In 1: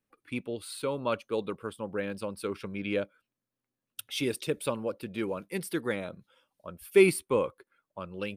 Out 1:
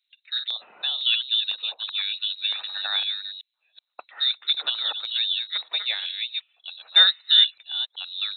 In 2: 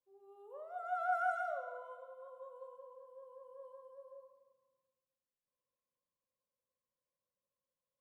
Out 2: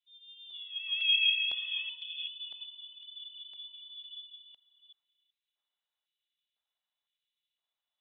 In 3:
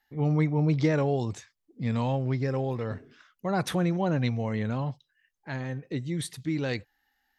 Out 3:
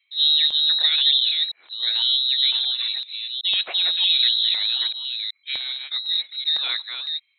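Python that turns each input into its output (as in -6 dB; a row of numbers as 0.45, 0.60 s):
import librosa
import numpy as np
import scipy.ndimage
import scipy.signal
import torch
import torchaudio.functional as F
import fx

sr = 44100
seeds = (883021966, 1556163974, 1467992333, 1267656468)

y = fx.reverse_delay(x, sr, ms=379, wet_db=-6)
y = fx.freq_invert(y, sr, carrier_hz=4000)
y = fx.filter_lfo_highpass(y, sr, shape='square', hz=0.99, low_hz=730.0, high_hz=2500.0, q=1.5)
y = F.gain(torch.from_numpy(y), 3.5).numpy()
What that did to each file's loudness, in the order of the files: +9.0, +10.5, +9.5 LU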